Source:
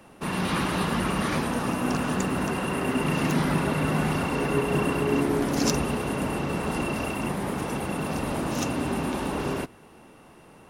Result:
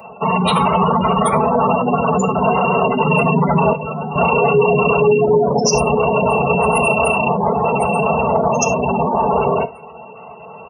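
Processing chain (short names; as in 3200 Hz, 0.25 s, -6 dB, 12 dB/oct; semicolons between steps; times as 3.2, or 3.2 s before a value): HPF 78 Hz 12 dB/oct; spectral gate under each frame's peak -15 dB strong; tilt +2 dB/oct; fixed phaser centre 700 Hz, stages 4; comb 4.5 ms, depth 56%; soft clip -5.5 dBFS, distortion -45 dB; 3.73–4.16 resonator 110 Hz, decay 1.7 s, mix 70%; reverb, pre-delay 3 ms, DRR 12 dB; maximiser +23.5 dB; gain -4 dB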